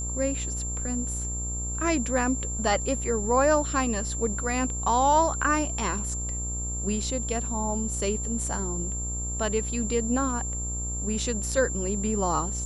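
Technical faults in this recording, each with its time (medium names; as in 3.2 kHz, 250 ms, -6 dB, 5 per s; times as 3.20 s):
buzz 60 Hz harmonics 23 -33 dBFS
whine 7.3 kHz -32 dBFS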